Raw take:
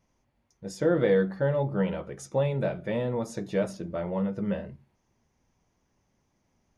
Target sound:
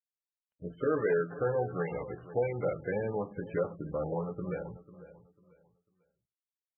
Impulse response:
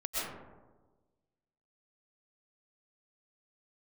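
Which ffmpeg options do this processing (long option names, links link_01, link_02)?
-filter_complex "[0:a]acrossover=split=470[link_01][link_02];[link_01]acompressor=threshold=-35dB:ratio=16[link_03];[link_03][link_02]amix=inputs=2:normalize=0,volume=21dB,asoftclip=hard,volume=-21dB,asetrate=39289,aresample=44100,atempo=1.12246,aeval=exprs='sgn(val(0))*max(abs(val(0))-0.00126,0)':channel_layout=same,asplit=2[link_04][link_05];[link_05]aecho=0:1:496|992|1488:0.158|0.0428|0.0116[link_06];[link_04][link_06]amix=inputs=2:normalize=0" -ar 22050 -c:a libmp3lame -b:a 8k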